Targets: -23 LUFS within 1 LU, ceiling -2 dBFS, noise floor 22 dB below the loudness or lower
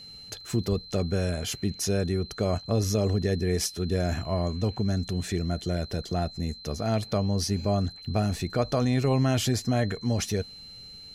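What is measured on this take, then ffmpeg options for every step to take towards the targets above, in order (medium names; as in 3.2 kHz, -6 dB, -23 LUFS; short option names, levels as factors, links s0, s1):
steady tone 4.1 kHz; tone level -43 dBFS; loudness -28.0 LUFS; peak level -14.0 dBFS; loudness target -23.0 LUFS
-> -af "bandreject=f=4100:w=30"
-af "volume=1.78"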